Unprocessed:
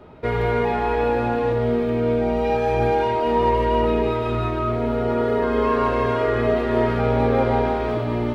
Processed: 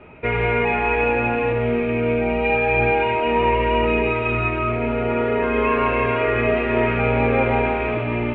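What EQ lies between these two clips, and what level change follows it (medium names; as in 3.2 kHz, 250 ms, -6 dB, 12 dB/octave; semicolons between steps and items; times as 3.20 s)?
resonant low-pass 2.5 kHz, resonance Q 8; distance through air 170 m; 0.0 dB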